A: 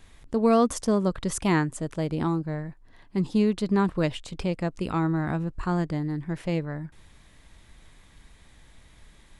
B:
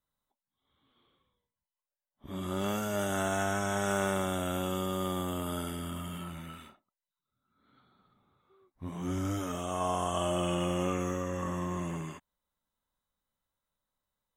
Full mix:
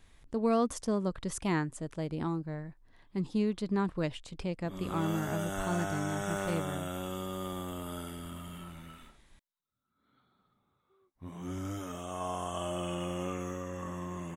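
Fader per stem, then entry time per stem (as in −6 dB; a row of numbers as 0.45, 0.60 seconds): −7.5, −5.0 decibels; 0.00, 2.40 seconds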